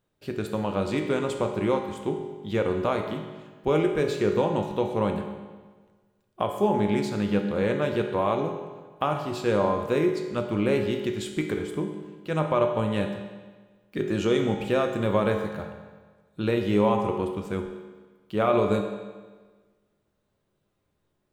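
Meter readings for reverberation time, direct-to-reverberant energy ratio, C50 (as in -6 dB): 1.4 s, 3.0 dB, 5.5 dB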